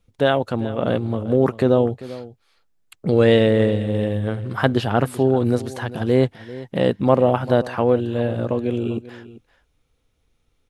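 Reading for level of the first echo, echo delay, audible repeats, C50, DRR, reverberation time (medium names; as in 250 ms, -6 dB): -17.0 dB, 393 ms, 1, no reverb, no reverb, no reverb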